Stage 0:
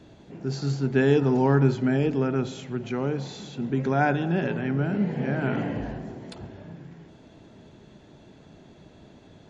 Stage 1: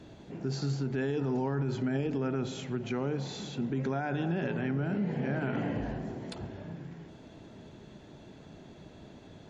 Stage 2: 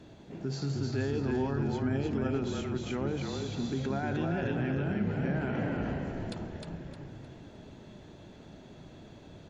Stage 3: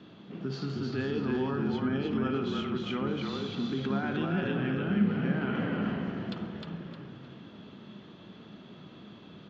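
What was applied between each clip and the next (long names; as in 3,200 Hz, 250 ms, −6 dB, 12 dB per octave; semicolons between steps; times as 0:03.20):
brickwall limiter −19.5 dBFS, peak gain reduction 11.5 dB; downward compressor 1.5 to 1, threshold −34 dBFS, peak gain reduction 4 dB
echo with shifted repeats 308 ms, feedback 34%, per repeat −33 Hz, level −3 dB; level −1.5 dB
loudspeaker in its box 140–4,900 Hz, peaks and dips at 200 Hz +8 dB, 610 Hz −5 dB, 870 Hz −3 dB, 1,200 Hz +9 dB, 3,100 Hz +8 dB; on a send at −9 dB: convolution reverb, pre-delay 52 ms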